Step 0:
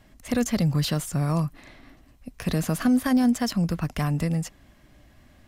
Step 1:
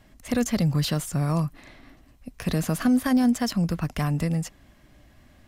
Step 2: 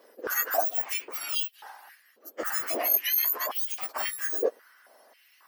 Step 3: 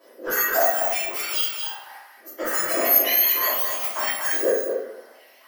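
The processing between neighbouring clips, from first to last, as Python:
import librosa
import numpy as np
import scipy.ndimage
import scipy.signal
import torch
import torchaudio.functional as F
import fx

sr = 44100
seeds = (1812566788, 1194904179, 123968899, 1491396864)

y1 = x
y2 = fx.octave_mirror(y1, sr, pivot_hz=1800.0)
y2 = fx.dynamic_eq(y2, sr, hz=3900.0, q=1.2, threshold_db=-51.0, ratio=4.0, max_db=-5)
y2 = fx.filter_held_highpass(y2, sr, hz=3.7, low_hz=490.0, high_hz=3200.0)
y2 = F.gain(torch.from_numpy(y2), 1.5).numpy()
y3 = y2 + 10.0 ** (-6.0 / 20.0) * np.pad(y2, (int(231 * sr / 1000.0), 0))[:len(y2)]
y3 = fx.room_shoebox(y3, sr, seeds[0], volume_m3=130.0, walls='mixed', distance_m=2.9)
y3 = F.gain(torch.from_numpy(y3), -3.5).numpy()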